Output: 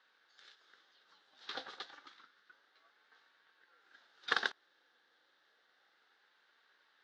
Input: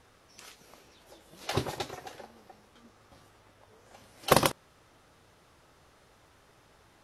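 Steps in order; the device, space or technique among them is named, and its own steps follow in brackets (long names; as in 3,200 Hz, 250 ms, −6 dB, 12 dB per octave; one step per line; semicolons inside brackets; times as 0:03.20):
0:02.08–0:02.49: high-pass filter 530 Hz
voice changer toy (ring modulator whose carrier an LFO sweeps 710 Hz, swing 45%, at 0.3 Hz; loudspeaker in its box 590–4,800 Hz, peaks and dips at 640 Hz −9 dB, 1,000 Hz −9 dB, 1,600 Hz +7 dB, 2,400 Hz −8 dB, 3,700 Hz +7 dB)
level −6 dB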